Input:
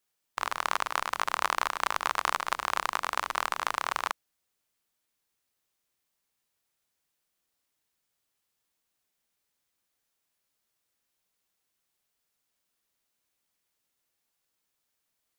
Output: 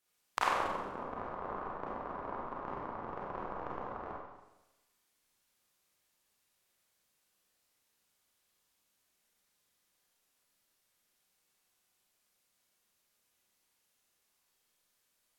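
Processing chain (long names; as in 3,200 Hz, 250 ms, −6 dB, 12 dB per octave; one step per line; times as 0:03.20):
treble cut that deepens with the level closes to 410 Hz, closed at −27.5 dBFS
four-comb reverb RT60 1 s, combs from 31 ms, DRR −4.5 dB
level −1.5 dB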